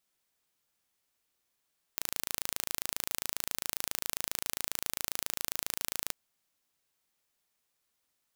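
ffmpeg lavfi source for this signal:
-f lavfi -i "aevalsrc='0.562*eq(mod(n,1609),0)':d=4.15:s=44100"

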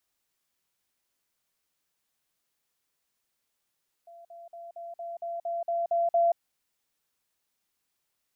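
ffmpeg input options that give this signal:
-f lavfi -i "aevalsrc='pow(10,(-46.5+3*floor(t/0.23))/20)*sin(2*PI*682*t)*clip(min(mod(t,0.23),0.18-mod(t,0.23))/0.005,0,1)':d=2.3:s=44100"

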